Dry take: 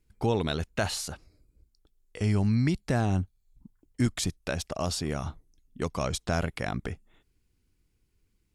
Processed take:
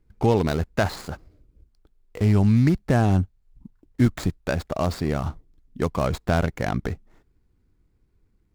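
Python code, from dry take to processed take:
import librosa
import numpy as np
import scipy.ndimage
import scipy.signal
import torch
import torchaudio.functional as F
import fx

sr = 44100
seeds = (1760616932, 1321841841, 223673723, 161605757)

y = scipy.ndimage.median_filter(x, 15, mode='constant')
y = y * 10.0 ** (7.0 / 20.0)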